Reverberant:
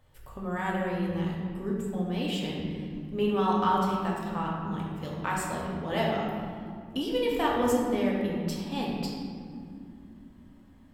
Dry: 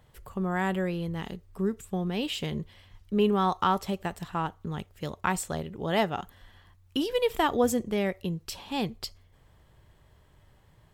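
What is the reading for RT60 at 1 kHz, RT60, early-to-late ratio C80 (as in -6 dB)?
2.0 s, 2.6 s, 2.0 dB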